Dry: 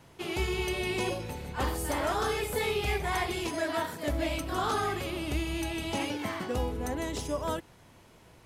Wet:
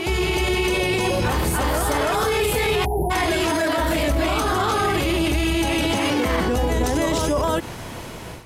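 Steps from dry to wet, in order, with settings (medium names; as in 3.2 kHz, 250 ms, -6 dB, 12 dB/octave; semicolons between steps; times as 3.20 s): level rider gain up to 13 dB; reverse echo 299 ms -5 dB; peak limiter -22 dBFS, peak gain reduction 17.5 dB; spectral selection erased 2.85–3.10 s, 970–10000 Hz; trim +9 dB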